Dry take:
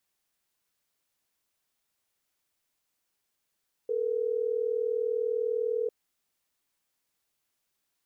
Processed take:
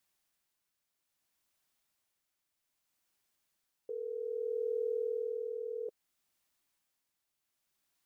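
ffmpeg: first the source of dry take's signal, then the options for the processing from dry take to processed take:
-f lavfi -i "aevalsrc='0.0355*(sin(2*PI*440*t)+sin(2*PI*480*t))*clip(min(mod(t,6),2-mod(t,6))/0.005,0,1)':d=3.12:s=44100"
-af "equalizer=f=460:t=o:w=0.21:g=-6.5,tremolo=f=0.62:d=0.47"

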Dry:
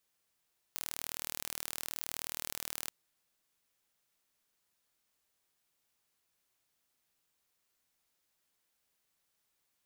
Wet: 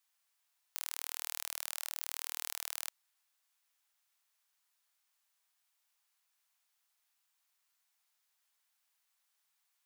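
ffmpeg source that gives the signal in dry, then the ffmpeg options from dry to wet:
-f lavfi -i "aevalsrc='0.282*eq(mod(n,1128),0)':d=2.14:s=44100"
-af "highpass=f=750:w=0.5412,highpass=f=750:w=1.3066"

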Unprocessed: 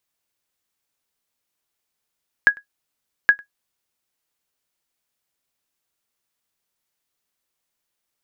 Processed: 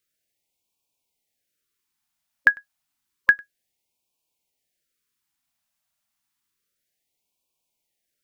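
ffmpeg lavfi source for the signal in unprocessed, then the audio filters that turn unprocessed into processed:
-f lavfi -i "aevalsrc='0.708*(sin(2*PI*1660*mod(t,0.82))*exp(-6.91*mod(t,0.82)/0.11)+0.0422*sin(2*PI*1660*max(mod(t,0.82)-0.1,0))*exp(-6.91*max(mod(t,0.82)-0.1,0)/0.11))':d=1.64:s=44100"
-af "afftfilt=real='re*(1-between(b*sr/1024,380*pow(1600/380,0.5+0.5*sin(2*PI*0.3*pts/sr))/1.41,380*pow(1600/380,0.5+0.5*sin(2*PI*0.3*pts/sr))*1.41))':imag='im*(1-between(b*sr/1024,380*pow(1600/380,0.5+0.5*sin(2*PI*0.3*pts/sr))/1.41,380*pow(1600/380,0.5+0.5*sin(2*PI*0.3*pts/sr))*1.41))':win_size=1024:overlap=0.75"

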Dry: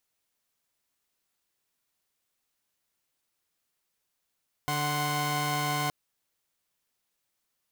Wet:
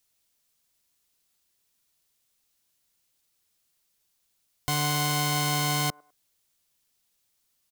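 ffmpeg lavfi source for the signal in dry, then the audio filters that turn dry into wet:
-f lavfi -i "aevalsrc='0.0355*((2*mod(146.83*t,1)-1)+(2*mod(739.99*t,1)-1)+(2*mod(1046.5*t,1)-1))':d=1.22:s=44100"
-filter_complex "[0:a]lowshelf=f=190:g=7.5,acrossover=split=300|1700|2800[s0][s1][s2][s3];[s1]aecho=1:1:102|204:0.0794|0.023[s4];[s3]acontrast=87[s5];[s0][s4][s2][s5]amix=inputs=4:normalize=0"

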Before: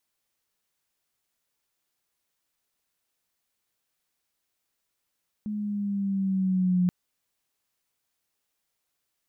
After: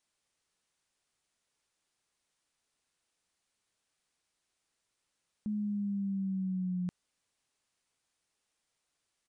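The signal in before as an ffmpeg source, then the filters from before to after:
-f lavfi -i "aevalsrc='pow(10,(-19+9.5*(t/1.43-1))/20)*sin(2*PI*212*1.43/(-3*log(2)/12)*(exp(-3*log(2)/12*t/1.43)-1))':d=1.43:s=44100"
-af "alimiter=level_in=2.11:limit=0.0631:level=0:latency=1:release=10,volume=0.473,aresample=22050,aresample=44100"

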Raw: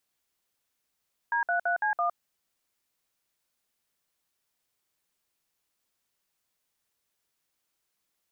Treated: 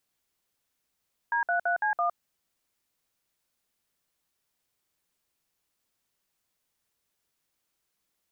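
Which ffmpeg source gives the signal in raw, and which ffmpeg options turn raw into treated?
-f lavfi -i "aevalsrc='0.0473*clip(min(mod(t,0.167),0.11-mod(t,0.167))/0.002,0,1)*(eq(floor(t/0.167),0)*(sin(2*PI*941*mod(t,0.167))+sin(2*PI*1633*mod(t,0.167)))+eq(floor(t/0.167),1)*(sin(2*PI*697*mod(t,0.167))+sin(2*PI*1477*mod(t,0.167)))+eq(floor(t/0.167),2)*(sin(2*PI*697*mod(t,0.167))+sin(2*PI*1477*mod(t,0.167)))+eq(floor(t/0.167),3)*(sin(2*PI*852*mod(t,0.167))+sin(2*PI*1633*mod(t,0.167)))+eq(floor(t/0.167),4)*(sin(2*PI*697*mod(t,0.167))+sin(2*PI*1209*mod(t,0.167))))':d=0.835:s=44100"
-af "lowshelf=f=360:g=3.5"

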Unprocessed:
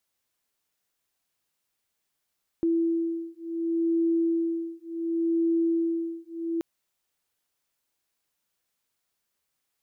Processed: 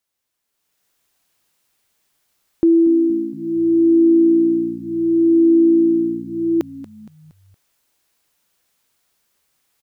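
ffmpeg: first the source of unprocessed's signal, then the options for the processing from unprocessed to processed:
-f lavfi -i "aevalsrc='0.0473*(sin(2*PI*332*t)+sin(2*PI*332.69*t))':d=3.98:s=44100"
-filter_complex "[0:a]asplit=5[s0][s1][s2][s3][s4];[s1]adelay=233,afreqshift=-59,volume=0.141[s5];[s2]adelay=466,afreqshift=-118,volume=0.0708[s6];[s3]adelay=699,afreqshift=-177,volume=0.0355[s7];[s4]adelay=932,afreqshift=-236,volume=0.0176[s8];[s0][s5][s6][s7][s8]amix=inputs=5:normalize=0,dynaudnorm=f=450:g=3:m=3.98"

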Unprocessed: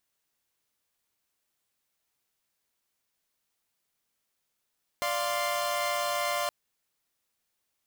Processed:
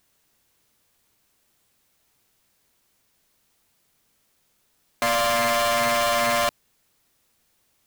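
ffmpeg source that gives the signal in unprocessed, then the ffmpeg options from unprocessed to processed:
-f lavfi -i "aevalsrc='0.0335*((2*mod(587.33*t,1)-1)+(2*mod(698.46*t,1)-1)+(2*mod(1046.5*t,1)-1))':d=1.47:s=44100"
-af "aeval=exprs='0.106*sin(PI/2*2.51*val(0)/0.106)':c=same,lowshelf=f=390:g=7"

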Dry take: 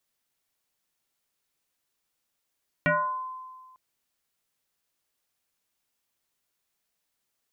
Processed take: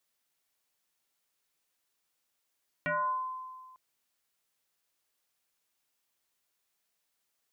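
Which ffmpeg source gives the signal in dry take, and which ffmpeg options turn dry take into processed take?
-f lavfi -i "aevalsrc='0.119*pow(10,-3*t/1.62)*sin(2*PI*1030*t+3.1*pow(10,-3*t/0.59)*sin(2*PI*0.42*1030*t))':d=0.9:s=44100"
-af "alimiter=level_in=1.41:limit=0.0631:level=0:latency=1,volume=0.708,lowshelf=f=270:g=-6"

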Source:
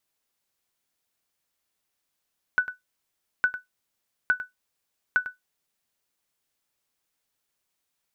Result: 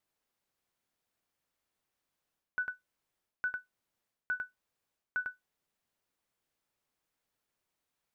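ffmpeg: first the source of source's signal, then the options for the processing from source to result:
-f lavfi -i "aevalsrc='0.237*(sin(2*PI*1490*mod(t,0.86))*exp(-6.91*mod(t,0.86)/0.15)+0.224*sin(2*PI*1490*max(mod(t,0.86)-0.1,0))*exp(-6.91*max(mod(t,0.86)-0.1,0)/0.15))':d=3.44:s=44100"
-af "highshelf=f=2500:g=-8.5,areverse,acompressor=threshold=0.0224:ratio=6,areverse"

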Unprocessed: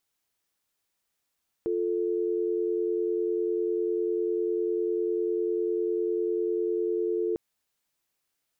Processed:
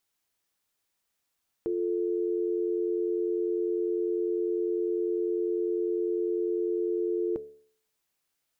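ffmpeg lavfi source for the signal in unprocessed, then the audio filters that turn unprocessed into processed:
-f lavfi -i "aevalsrc='0.0422*(sin(2*PI*350*t)+sin(2*PI*440*t))':d=5.7:s=44100"
-af "bandreject=f=72.9:t=h:w=4,bandreject=f=145.8:t=h:w=4,bandreject=f=218.7:t=h:w=4,bandreject=f=291.6:t=h:w=4,bandreject=f=364.5:t=h:w=4,bandreject=f=437.4:t=h:w=4,bandreject=f=510.3:t=h:w=4,bandreject=f=583.2:t=h:w=4,bandreject=f=656.1:t=h:w=4"

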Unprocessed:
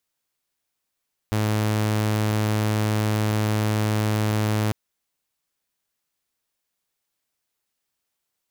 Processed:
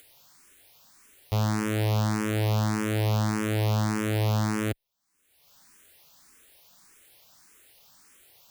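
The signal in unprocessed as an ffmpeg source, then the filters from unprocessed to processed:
-f lavfi -i "aevalsrc='0.133*(2*mod(107*t,1)-1)':d=3.4:s=44100"
-filter_complex "[0:a]acompressor=mode=upward:threshold=0.0224:ratio=2.5,asplit=2[s0][s1];[s1]afreqshift=1.7[s2];[s0][s2]amix=inputs=2:normalize=1"

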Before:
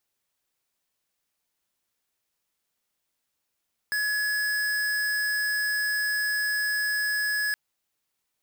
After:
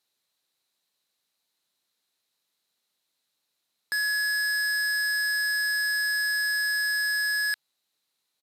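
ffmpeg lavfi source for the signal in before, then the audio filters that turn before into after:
-f lavfi -i "aevalsrc='0.0473*(2*lt(mod(1690*t,1),0.5)-1)':d=3.62:s=44100"
-af "aresample=32000,aresample=44100,highpass=140,equalizer=f=4000:t=o:w=0.31:g=12"

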